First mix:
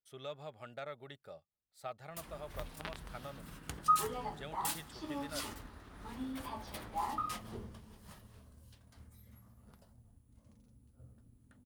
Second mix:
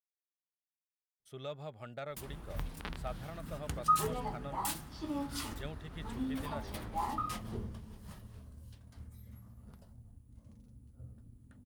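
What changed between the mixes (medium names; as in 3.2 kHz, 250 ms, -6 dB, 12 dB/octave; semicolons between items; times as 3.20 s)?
speech: entry +1.20 s; master: add bass shelf 300 Hz +8 dB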